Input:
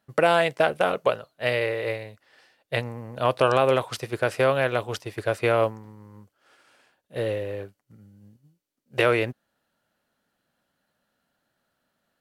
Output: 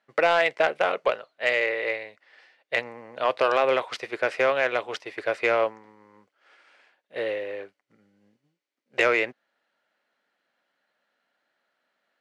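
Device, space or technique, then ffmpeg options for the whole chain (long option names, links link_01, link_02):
intercom: -af "highpass=380,lowpass=5000,equalizer=frequency=2100:width_type=o:width=0.51:gain=7,asoftclip=type=tanh:threshold=-9dB"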